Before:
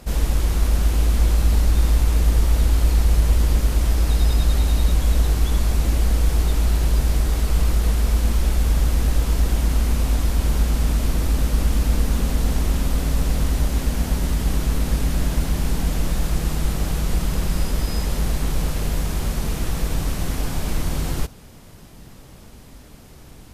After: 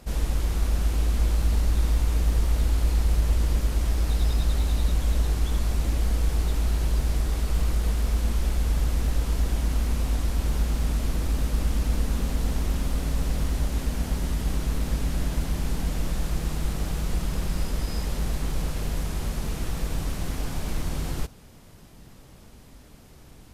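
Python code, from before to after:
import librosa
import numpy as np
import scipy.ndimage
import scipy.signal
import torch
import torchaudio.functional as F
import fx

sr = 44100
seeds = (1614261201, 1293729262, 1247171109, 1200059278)

y = fx.doppler_dist(x, sr, depth_ms=0.21)
y = y * librosa.db_to_amplitude(-5.5)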